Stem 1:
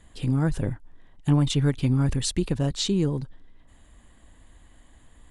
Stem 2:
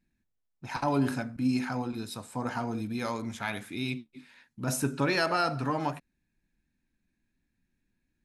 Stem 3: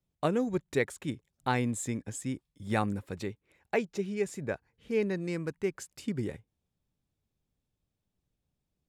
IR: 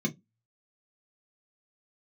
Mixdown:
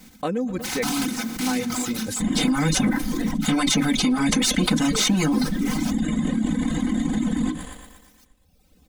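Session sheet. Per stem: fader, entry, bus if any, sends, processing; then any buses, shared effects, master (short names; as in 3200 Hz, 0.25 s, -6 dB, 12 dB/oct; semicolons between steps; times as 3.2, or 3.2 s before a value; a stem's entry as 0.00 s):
-2.0 dB, 2.20 s, send -3 dB, echo send -19 dB, sample leveller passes 1; spectral compressor 4:1
-15.5 dB, 0.00 s, send -7 dB, no echo send, spectral contrast lowered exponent 0.21
-14.0 dB, 0.00 s, no send, echo send -14 dB, dry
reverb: on, RT60 0.15 s, pre-delay 3 ms
echo: feedback echo 0.118 s, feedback 54%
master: reverb removal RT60 0.93 s; comb 3.9 ms, depth 76%; fast leveller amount 70%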